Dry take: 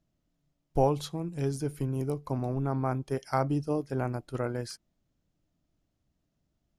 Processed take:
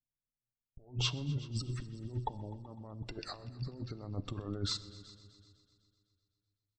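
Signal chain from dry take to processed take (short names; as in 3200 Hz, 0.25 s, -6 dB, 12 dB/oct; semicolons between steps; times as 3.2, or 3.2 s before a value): LPF 7900 Hz 24 dB/oct; notch 810 Hz, Q 27; spectral gate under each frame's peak -30 dB strong; expander -49 dBFS; low shelf 130 Hz +4 dB; negative-ratio compressor -37 dBFS, ratio -0.5; pitch shift -3 st; multi-head echo 0.126 s, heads all three, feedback 46%, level -22.5 dB; shoebox room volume 1900 m³, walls mixed, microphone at 0.33 m; gain -2 dB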